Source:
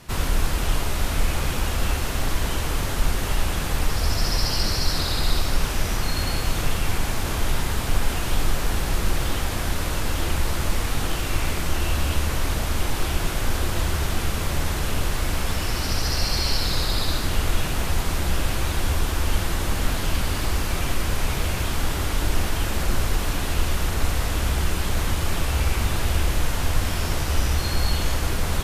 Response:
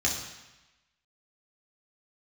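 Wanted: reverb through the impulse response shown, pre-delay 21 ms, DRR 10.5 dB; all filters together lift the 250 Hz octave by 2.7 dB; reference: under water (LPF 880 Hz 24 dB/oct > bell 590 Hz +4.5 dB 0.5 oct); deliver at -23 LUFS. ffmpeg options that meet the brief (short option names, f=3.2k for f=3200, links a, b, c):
-filter_complex "[0:a]equalizer=f=250:t=o:g=3.5,asplit=2[a][b];[1:a]atrim=start_sample=2205,adelay=21[c];[b][c]afir=irnorm=-1:irlink=0,volume=-19.5dB[d];[a][d]amix=inputs=2:normalize=0,lowpass=f=880:w=0.5412,lowpass=f=880:w=1.3066,equalizer=f=590:t=o:w=0.5:g=4.5,volume=4dB"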